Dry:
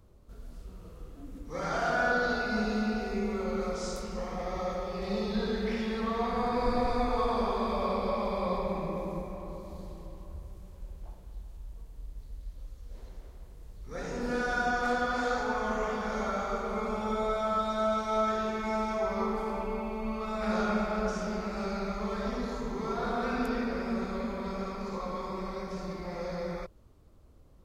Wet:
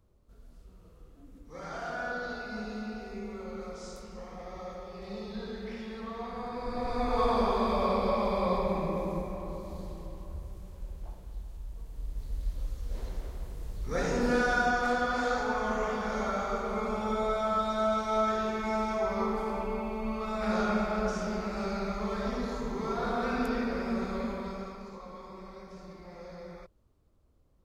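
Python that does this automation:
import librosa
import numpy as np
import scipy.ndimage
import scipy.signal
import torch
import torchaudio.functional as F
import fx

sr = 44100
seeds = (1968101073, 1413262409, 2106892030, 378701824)

y = fx.gain(x, sr, db=fx.line((6.66, -8.0), (7.24, 2.5), (11.73, 2.5), (12.46, 9.0), (13.83, 9.0), (14.87, 0.5), (24.3, 0.5), (24.99, -9.5)))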